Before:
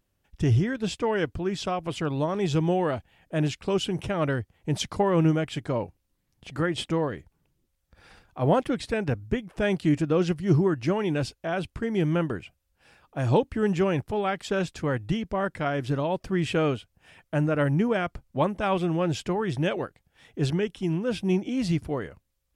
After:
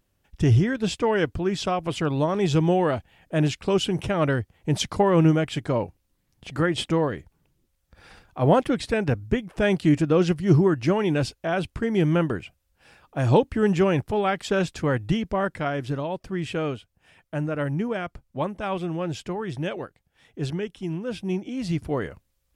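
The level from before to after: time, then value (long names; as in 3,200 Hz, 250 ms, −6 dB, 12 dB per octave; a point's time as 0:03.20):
0:15.28 +3.5 dB
0:16.18 −3 dB
0:21.61 −3 dB
0:22.04 +5 dB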